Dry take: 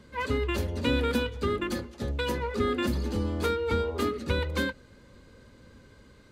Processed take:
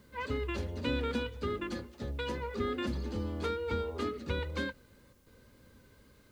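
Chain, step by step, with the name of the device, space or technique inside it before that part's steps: worn cassette (low-pass 6.5 kHz 12 dB/octave; wow and flutter 20 cents; level dips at 5.13 s, 133 ms -7 dB; white noise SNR 36 dB); trim -6.5 dB

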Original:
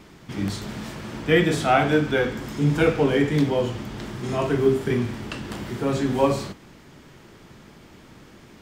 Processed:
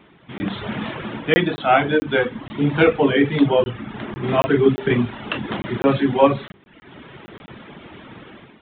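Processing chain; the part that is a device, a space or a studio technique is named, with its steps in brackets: hum notches 50/100/150/200/250/300/350/400/450/500 Hz; reverb removal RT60 0.8 s; call with lost packets (high-pass 140 Hz 6 dB/octave; resampled via 8 kHz; level rider gain up to 13 dB; lost packets of 20 ms random); 3.65–4.28 s: distance through air 230 m; trim -1 dB

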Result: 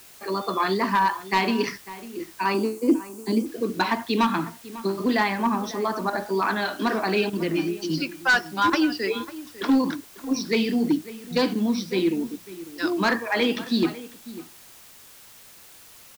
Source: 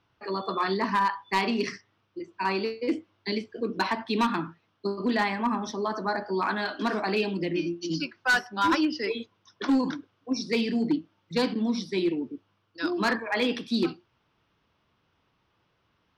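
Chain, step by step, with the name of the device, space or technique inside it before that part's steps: worn cassette (low-pass 7.7 kHz; wow and flutter; level dips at 6.10/7.30/8.70 s, 29 ms -9 dB; white noise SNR 23 dB); 2.54–3.46 s: ten-band graphic EQ 125 Hz -10 dB, 250 Hz +11 dB, 500 Hz -4 dB, 1 kHz +6 dB, 2 kHz -11 dB, 4 kHz -9 dB, 8 kHz +7 dB; echo from a far wall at 94 m, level -16 dB; trim +3.5 dB

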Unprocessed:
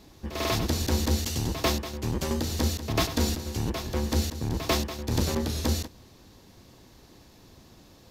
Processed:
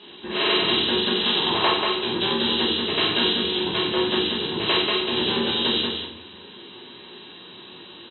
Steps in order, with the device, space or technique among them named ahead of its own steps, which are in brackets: 1.16–1.70 s: peaking EQ 910 Hz +11.5 dB 1.5 oct; hearing aid with frequency lowering (knee-point frequency compression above 2.6 kHz 4:1; compression 3:1, threshold -29 dBFS, peak gain reduction 11 dB; cabinet simulation 270–6400 Hz, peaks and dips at 390 Hz +6 dB, 600 Hz -6 dB, 1 kHz +4 dB, 1.6 kHz +7 dB, 2.4 kHz +6 dB, 3.7 kHz +8 dB); delay 186 ms -5 dB; simulated room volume 100 m³, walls mixed, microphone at 1.3 m; trim +2 dB

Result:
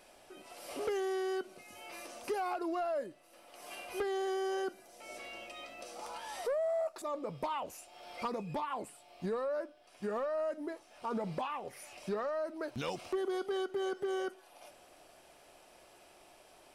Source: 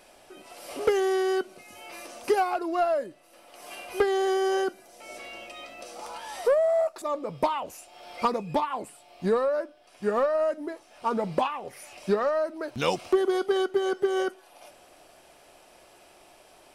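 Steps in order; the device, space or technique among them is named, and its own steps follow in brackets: clipper into limiter (hard clipper -16.5 dBFS, distortion -28 dB; peak limiter -24 dBFS, peak gain reduction 7.5 dB); trim -5 dB

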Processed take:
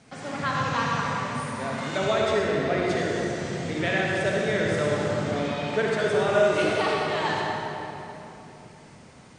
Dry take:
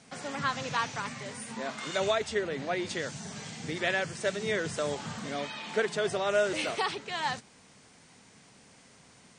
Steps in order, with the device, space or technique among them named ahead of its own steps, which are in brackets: bass shelf 100 Hz +6 dB; swimming-pool hall (reverberation RT60 3.4 s, pre-delay 48 ms, DRR -3.5 dB; treble shelf 3.6 kHz -7 dB); trim +2 dB

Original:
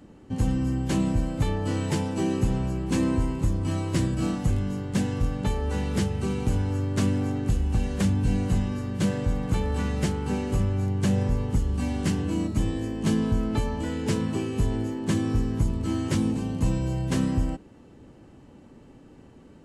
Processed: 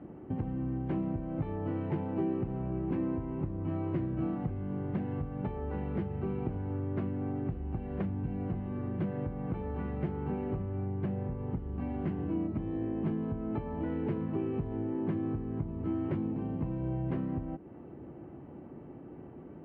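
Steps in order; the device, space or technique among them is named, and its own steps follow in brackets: bass amplifier (compression, threshold -33 dBFS, peak gain reduction 14 dB; cabinet simulation 60–2100 Hz, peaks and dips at 150 Hz +5 dB, 350 Hz +8 dB, 700 Hz +6 dB, 1.7 kHz -4 dB)

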